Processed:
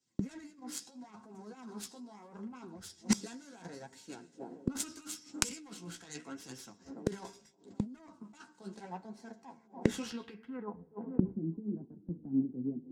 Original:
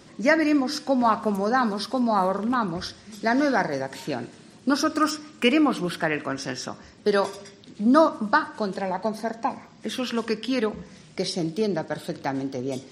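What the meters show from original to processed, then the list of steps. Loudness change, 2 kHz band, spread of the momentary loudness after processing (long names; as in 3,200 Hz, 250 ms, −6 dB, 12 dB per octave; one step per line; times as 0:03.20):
−15.0 dB, −22.0 dB, 17 LU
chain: stylus tracing distortion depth 0.38 ms
compressor whose output falls as the input rises −26 dBFS, ratio −1
high-shelf EQ 8,800 Hz +10.5 dB
low-pass filter sweep 7,300 Hz → 260 Hz, 0:09.98–0:11.19
flanger 0.76 Hz, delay 7.3 ms, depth 9.7 ms, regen +21%
noise gate −41 dBFS, range −23 dB
notch comb filter 600 Hz
delay with a band-pass on its return 289 ms, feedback 62%, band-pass 400 Hz, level −21 dB
gate with flip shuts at −31 dBFS, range −24 dB
parametric band 190 Hz +3 dB 0.87 octaves
multiband upward and downward expander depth 100%
level +8.5 dB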